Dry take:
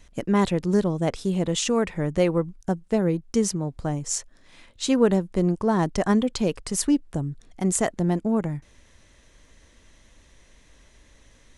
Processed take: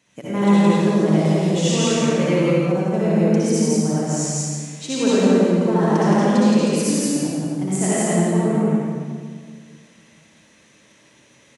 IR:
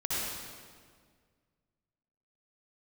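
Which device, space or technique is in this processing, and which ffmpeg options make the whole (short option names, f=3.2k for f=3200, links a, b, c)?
stadium PA: -filter_complex "[0:a]highpass=f=130:w=0.5412,highpass=f=130:w=1.3066,equalizer=f=2.5k:t=o:w=0.28:g=4,aecho=1:1:169.1|277:0.891|0.282[a];[1:a]atrim=start_sample=2205[b];[a][b]afir=irnorm=-1:irlink=0,volume=-4.5dB"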